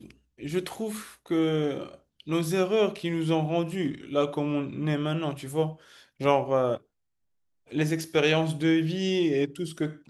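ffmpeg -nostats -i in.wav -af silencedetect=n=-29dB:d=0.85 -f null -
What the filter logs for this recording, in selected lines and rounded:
silence_start: 6.76
silence_end: 7.74 | silence_duration: 0.97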